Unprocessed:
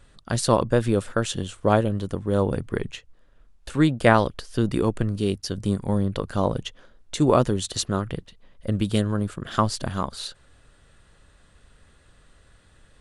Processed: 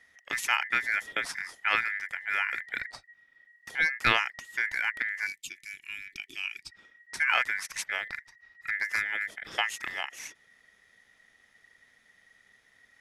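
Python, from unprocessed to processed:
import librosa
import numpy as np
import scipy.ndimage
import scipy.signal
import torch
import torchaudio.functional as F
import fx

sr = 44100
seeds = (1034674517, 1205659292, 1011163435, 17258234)

y = x * np.sin(2.0 * np.pi * 1900.0 * np.arange(len(x)) / sr)
y = fx.spec_box(y, sr, start_s=5.27, length_s=1.43, low_hz=400.0, high_hz=2200.0, gain_db=-20)
y = y * 10.0 ** (-5.0 / 20.0)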